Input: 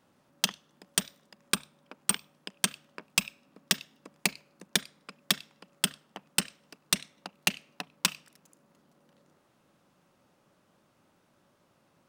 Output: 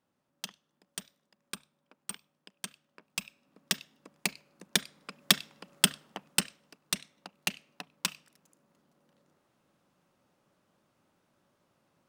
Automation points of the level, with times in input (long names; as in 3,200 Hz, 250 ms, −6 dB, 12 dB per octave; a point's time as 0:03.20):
0:02.86 −13 dB
0:03.72 −3.5 dB
0:04.28 −3.5 dB
0:05.35 +4 dB
0:06.05 +4 dB
0:06.78 −5 dB